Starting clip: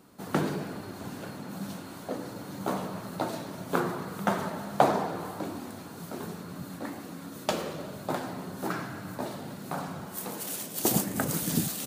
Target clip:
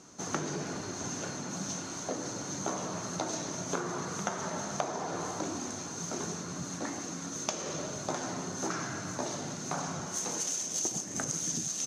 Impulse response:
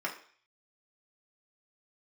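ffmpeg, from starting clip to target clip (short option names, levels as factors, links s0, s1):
-filter_complex "[0:a]lowpass=f=6300:t=q:w=15,acompressor=threshold=0.0282:ratio=12,asplit=2[s0][s1];[1:a]atrim=start_sample=2205[s2];[s1][s2]afir=irnorm=-1:irlink=0,volume=0.2[s3];[s0][s3]amix=inputs=2:normalize=0"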